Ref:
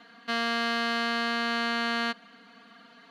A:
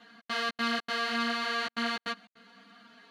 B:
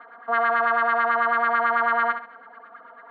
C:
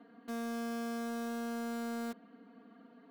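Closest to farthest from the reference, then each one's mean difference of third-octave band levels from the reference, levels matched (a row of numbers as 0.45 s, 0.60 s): A, C, B; 4.5 dB, 7.0 dB, 10.0 dB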